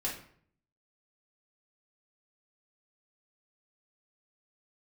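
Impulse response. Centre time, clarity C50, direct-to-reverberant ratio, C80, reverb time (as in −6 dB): 30 ms, 5.5 dB, −5.5 dB, 10.5 dB, 0.60 s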